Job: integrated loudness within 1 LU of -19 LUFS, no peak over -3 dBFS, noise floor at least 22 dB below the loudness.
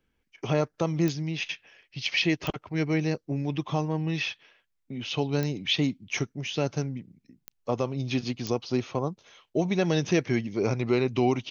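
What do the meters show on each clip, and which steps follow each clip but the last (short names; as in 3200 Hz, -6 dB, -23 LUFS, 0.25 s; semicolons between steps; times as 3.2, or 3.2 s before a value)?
clicks 5; loudness -28.5 LUFS; peak -11.0 dBFS; loudness target -19.0 LUFS
-> de-click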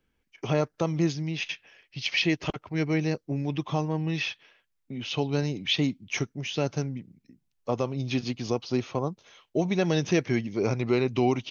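clicks 0; loudness -28.5 LUFS; peak -11.0 dBFS; loudness target -19.0 LUFS
-> gain +9.5 dB; limiter -3 dBFS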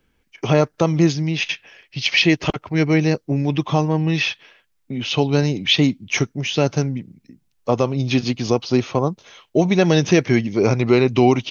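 loudness -19.0 LUFS; peak -3.0 dBFS; noise floor -66 dBFS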